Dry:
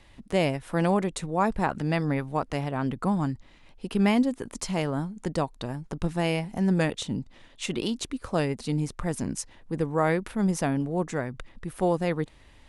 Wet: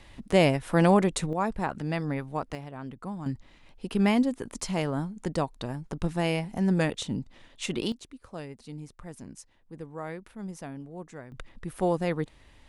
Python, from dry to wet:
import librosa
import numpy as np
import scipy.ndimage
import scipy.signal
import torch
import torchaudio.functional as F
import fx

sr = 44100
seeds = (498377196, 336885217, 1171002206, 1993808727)

y = fx.gain(x, sr, db=fx.steps((0.0, 3.5), (1.33, -4.0), (2.55, -11.0), (3.26, -1.0), (7.92, -13.5), (11.32, -1.5)))